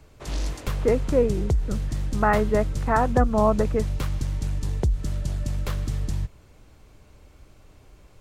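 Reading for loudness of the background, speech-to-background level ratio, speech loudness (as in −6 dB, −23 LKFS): −29.0 LKFS, 5.0 dB, −24.0 LKFS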